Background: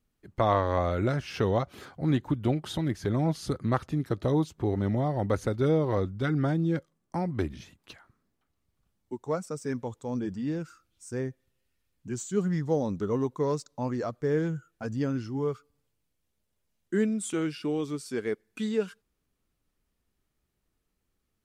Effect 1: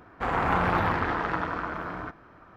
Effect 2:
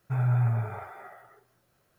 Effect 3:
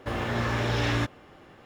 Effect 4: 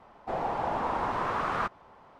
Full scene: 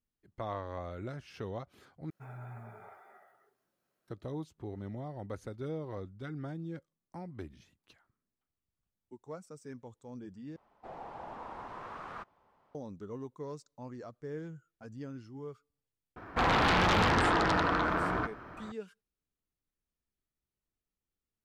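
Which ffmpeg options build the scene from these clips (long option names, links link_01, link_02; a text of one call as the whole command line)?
ffmpeg -i bed.wav -i cue0.wav -i cue1.wav -i cue2.wav -i cue3.wav -filter_complex "[0:a]volume=-14dB[link_01];[2:a]lowshelf=frequency=150:width_type=q:width=1.5:gain=-9.5[link_02];[1:a]aeval=exprs='0.282*sin(PI/2*3.98*val(0)/0.282)':channel_layout=same[link_03];[link_01]asplit=3[link_04][link_05][link_06];[link_04]atrim=end=2.104[link_07];[link_02]atrim=end=1.98,asetpts=PTS-STARTPTS,volume=-13dB[link_08];[link_05]atrim=start=4.076:end=10.564[link_09];[4:a]atrim=end=2.19,asetpts=PTS-STARTPTS,volume=-14.5dB[link_10];[link_06]atrim=start=12.746[link_11];[link_03]atrim=end=2.56,asetpts=PTS-STARTPTS,volume=-11.5dB,afade=type=in:duration=0.004:curve=hsin,afade=type=out:start_time=2.556:duration=0.004:curve=hsin,adelay=16160[link_12];[link_07][link_08]acrossfade=duration=0.004:curve1=hsin:curve2=hsin[link_13];[link_13][link_09]acrossfade=duration=0.004:curve1=hsin:curve2=hsin[link_14];[link_14][link_10]acrossfade=duration=0.004:curve1=hsin:curve2=hsin[link_15];[link_15][link_11]acrossfade=duration=0.004:curve1=hsin:curve2=hsin[link_16];[link_16][link_12]amix=inputs=2:normalize=0" out.wav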